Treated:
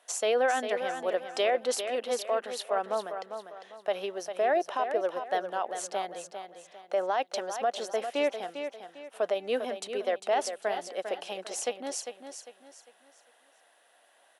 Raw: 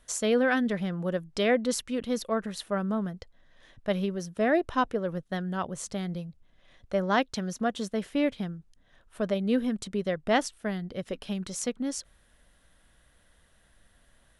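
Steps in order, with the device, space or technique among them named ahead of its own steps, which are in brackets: laptop speaker (HPF 380 Hz 24 dB/oct; bell 760 Hz +11 dB 0.58 oct; bell 2700 Hz +5 dB 0.3 oct; limiter -19 dBFS, peak gain reduction 13 dB); feedback echo 0.4 s, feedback 34%, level -8.5 dB

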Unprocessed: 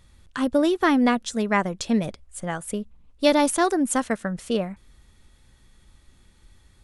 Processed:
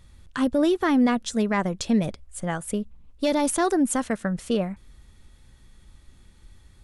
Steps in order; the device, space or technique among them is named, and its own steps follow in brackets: soft clipper into limiter (soft clip -8 dBFS, distortion -24 dB; limiter -14.5 dBFS, peak gain reduction 5.5 dB); low shelf 240 Hz +4 dB

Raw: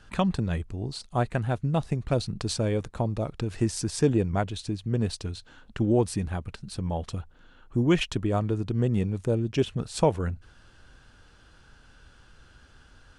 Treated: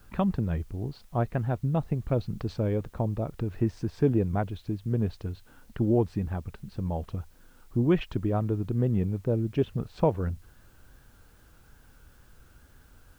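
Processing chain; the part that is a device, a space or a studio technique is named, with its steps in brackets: cassette deck with a dirty head (tape spacing loss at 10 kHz 36 dB; wow and flutter; white noise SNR 37 dB)

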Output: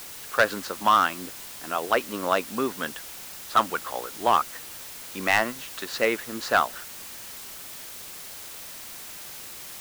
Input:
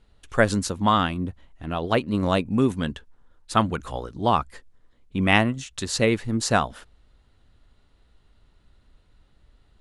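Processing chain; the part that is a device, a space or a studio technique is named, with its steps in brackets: drive-through speaker (BPF 430–3600 Hz; bell 1400 Hz +6 dB; hard clip -11 dBFS, distortion -11 dB; white noise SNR 12 dB)

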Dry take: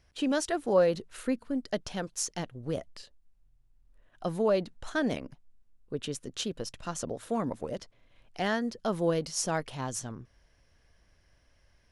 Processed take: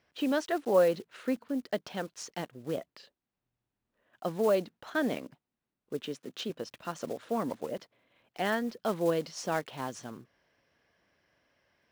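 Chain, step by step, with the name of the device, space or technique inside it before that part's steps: early digital voice recorder (BPF 200–3800 Hz; block floating point 5-bit); 6.01–6.5 Chebyshev high-pass 160 Hz, order 2

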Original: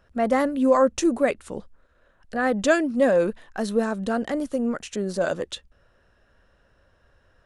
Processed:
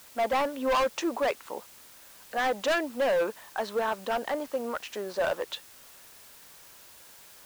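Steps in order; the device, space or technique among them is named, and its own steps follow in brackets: drive-through speaker (BPF 540–4000 Hz; bell 930 Hz +7.5 dB 0.55 oct; hard clip -22.5 dBFS, distortion -7 dB; white noise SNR 21 dB)

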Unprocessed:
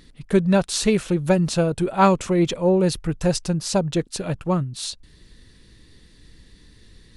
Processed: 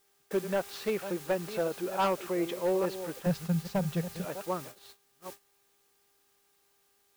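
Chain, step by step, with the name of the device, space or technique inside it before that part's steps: reverse delay 0.408 s, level -12 dB; aircraft radio (BPF 380–2400 Hz; hard clip -15.5 dBFS, distortion -12 dB; buzz 400 Hz, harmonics 4, -49 dBFS -4 dB/oct; white noise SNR 14 dB; gate -36 dBFS, range -22 dB); 3.26–4.25 resonant low shelf 230 Hz +9.5 dB, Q 3; gain -7 dB

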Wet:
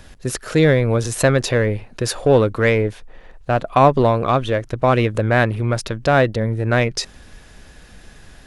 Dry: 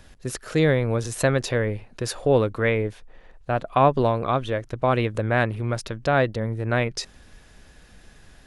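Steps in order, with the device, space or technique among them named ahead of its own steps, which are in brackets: parallel distortion (in parallel at -9 dB: hard clip -21.5 dBFS, distortion -7 dB); on the sum: gain +4 dB

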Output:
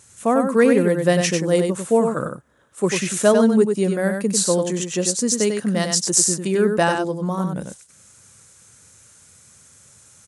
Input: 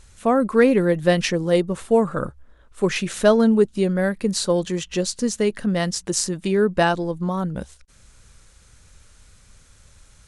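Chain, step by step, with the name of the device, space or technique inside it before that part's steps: budget condenser microphone (HPF 100 Hz 24 dB/oct; resonant high shelf 5500 Hz +6.5 dB, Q 1.5); 5.26–6 dynamic EQ 4300 Hz, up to +7 dB, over -40 dBFS, Q 1.7; echo 96 ms -5.5 dB

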